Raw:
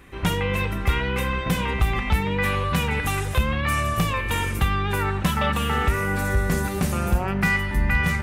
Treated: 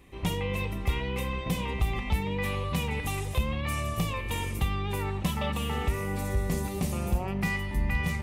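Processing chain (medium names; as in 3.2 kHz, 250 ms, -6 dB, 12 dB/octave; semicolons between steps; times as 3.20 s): peaking EQ 1.5 kHz -14 dB 0.46 oct; trim -6 dB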